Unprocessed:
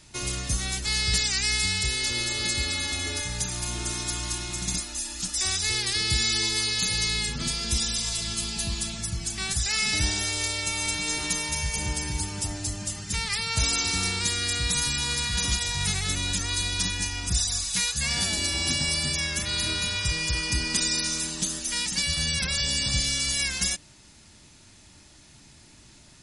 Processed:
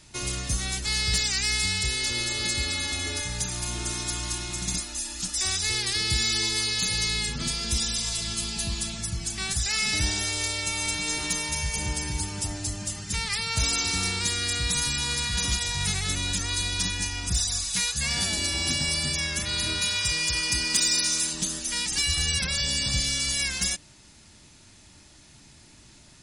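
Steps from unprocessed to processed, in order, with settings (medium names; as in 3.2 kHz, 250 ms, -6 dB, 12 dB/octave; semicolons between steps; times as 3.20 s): 19.81–21.33 s: tilt EQ +1.5 dB/octave; 21.89–22.38 s: comb 2.5 ms, depth 72%; saturation -12 dBFS, distortion -28 dB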